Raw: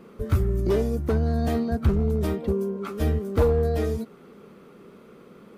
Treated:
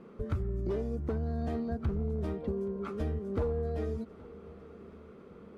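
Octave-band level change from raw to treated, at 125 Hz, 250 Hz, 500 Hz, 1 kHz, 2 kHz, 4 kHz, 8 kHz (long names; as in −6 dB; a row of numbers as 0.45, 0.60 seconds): −10.0 dB, −9.0 dB, −10.0 dB, −10.0 dB, −11.5 dB, below −10 dB, below −15 dB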